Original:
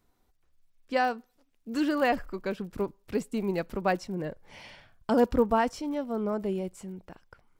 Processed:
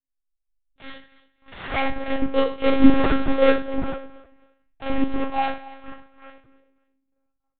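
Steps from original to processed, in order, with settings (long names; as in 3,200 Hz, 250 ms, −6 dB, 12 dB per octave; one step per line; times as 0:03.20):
source passing by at 0:02.85, 56 m/s, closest 3.2 metres
low-pass filter 3,100 Hz
low-shelf EQ 70 Hz +7.5 dB
comb filter 3.9 ms, depth 95%
in parallel at −6 dB: fuzz pedal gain 51 dB, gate −54 dBFS
on the sum: phase shifter 1.6 Hz, delay 4.5 ms, feedback 57%
on a send: repeating echo 272 ms, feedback 24%, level −18 dB
on the sum: four-comb reverb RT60 0.43 s, combs from 27 ms, DRR −8.5 dB
one-pitch LPC vocoder at 8 kHz 270 Hz
level −6 dB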